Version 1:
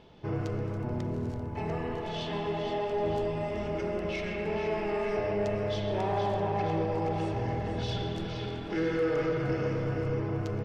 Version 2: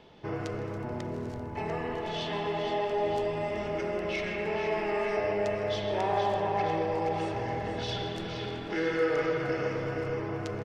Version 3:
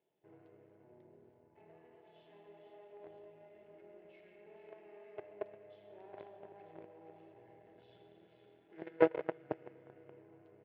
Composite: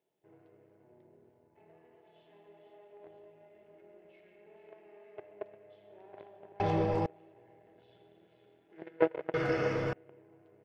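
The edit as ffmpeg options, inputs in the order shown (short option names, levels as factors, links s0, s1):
-filter_complex "[2:a]asplit=3[s0][s1][s2];[s0]atrim=end=6.602[s3];[0:a]atrim=start=6.598:end=7.062[s4];[s1]atrim=start=7.058:end=9.342[s5];[1:a]atrim=start=9.338:end=9.932[s6];[s2]atrim=start=9.928[s7];[s3][s4]acrossfade=d=0.004:c1=hsin:c2=hsin[s8];[s8][s5]acrossfade=d=0.004:c1=hsin:c2=hsin[s9];[s9][s6]acrossfade=d=0.004:c1=hsin:c2=hsin[s10];[s10][s7]acrossfade=d=0.004:c1=hsin:c2=hsin"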